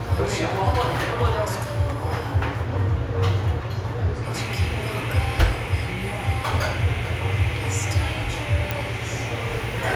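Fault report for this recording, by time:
0:08.71: click

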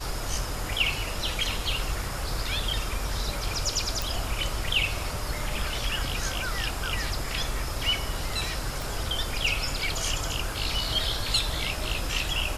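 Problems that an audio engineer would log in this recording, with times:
0:04.02: click
0:08.82: click

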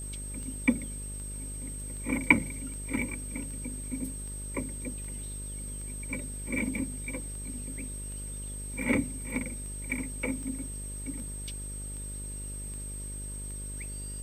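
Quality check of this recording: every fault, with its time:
mains buzz 50 Hz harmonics 12 −40 dBFS
scratch tick 78 rpm
whistle 8,300 Hz −40 dBFS

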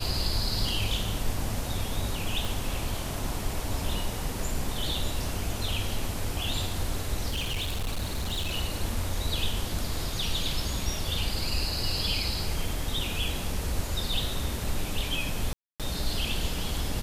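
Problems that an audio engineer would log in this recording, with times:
0:02.45: click
0:07.28–0:08.57: clipping −26 dBFS
0:15.53–0:15.80: drop-out 267 ms

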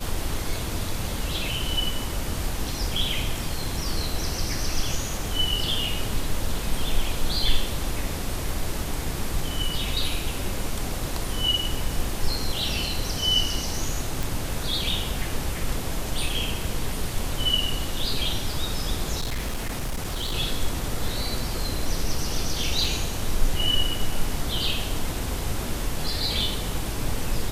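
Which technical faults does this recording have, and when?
0:14.23: click
0:19.20–0:20.35: clipping −24 dBFS
0:22.84: drop-out 3.8 ms

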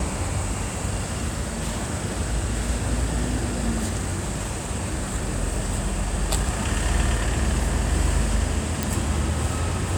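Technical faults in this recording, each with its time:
0:08.83: click

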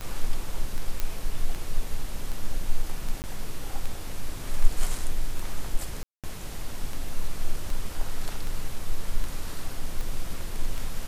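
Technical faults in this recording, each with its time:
scratch tick 78 rpm −20 dBFS
0:01.00: click −13 dBFS
0:03.22–0:03.24: drop-out 19 ms
0:06.03–0:06.24: drop-out 207 ms

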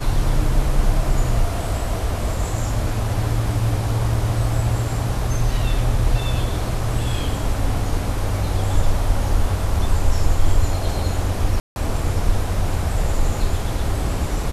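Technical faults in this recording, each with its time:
0:11.60–0:11.76: drop-out 161 ms

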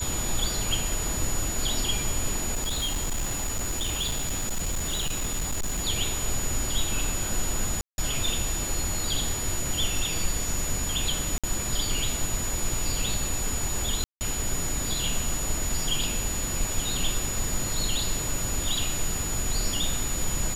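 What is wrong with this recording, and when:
whistle 6,900 Hz −31 dBFS
0:02.54–0:05.86: clipping −24 dBFS
0:07.81–0:07.98: drop-out 171 ms
0:11.38–0:11.44: drop-out 56 ms
0:14.04–0:14.21: drop-out 169 ms

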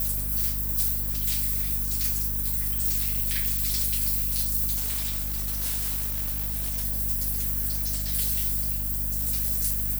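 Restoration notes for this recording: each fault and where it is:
mains hum 50 Hz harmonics 5 −32 dBFS
0:04.76–0:06.84: clipping −24.5 dBFS

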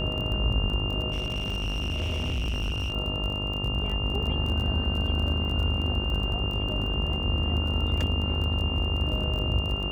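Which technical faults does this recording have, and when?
mains buzz 50 Hz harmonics 27 −32 dBFS
surface crackle 29 per second −32 dBFS
whistle 2,800 Hz −31 dBFS
0:01.11–0:02.93: clipping −25.5 dBFS

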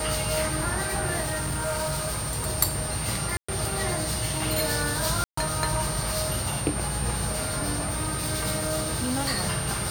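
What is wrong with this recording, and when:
whistle 8,900 Hz −32 dBFS
0:01.22–0:02.47: clipping −24.5 dBFS
0:03.37–0:03.48: drop-out 115 ms
0:05.24–0:05.37: drop-out 134 ms
0:07.74–0:09.35: clipping −22 dBFS

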